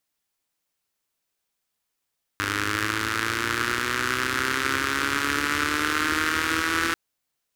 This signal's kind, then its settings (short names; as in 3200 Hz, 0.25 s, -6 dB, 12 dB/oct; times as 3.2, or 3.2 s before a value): four-cylinder engine model, changing speed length 4.54 s, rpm 3000, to 5000, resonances 91/310/1400 Hz